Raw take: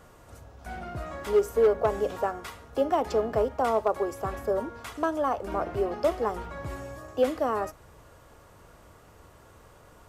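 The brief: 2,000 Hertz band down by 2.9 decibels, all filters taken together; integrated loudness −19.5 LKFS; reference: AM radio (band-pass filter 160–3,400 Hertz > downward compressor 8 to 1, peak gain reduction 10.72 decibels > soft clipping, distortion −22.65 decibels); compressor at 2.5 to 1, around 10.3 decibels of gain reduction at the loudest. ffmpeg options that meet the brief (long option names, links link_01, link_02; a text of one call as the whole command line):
ffmpeg -i in.wav -af "equalizer=frequency=2000:width_type=o:gain=-3.5,acompressor=threshold=-34dB:ratio=2.5,highpass=160,lowpass=3400,acompressor=threshold=-38dB:ratio=8,asoftclip=threshold=-31.5dB,volume=24.5dB" out.wav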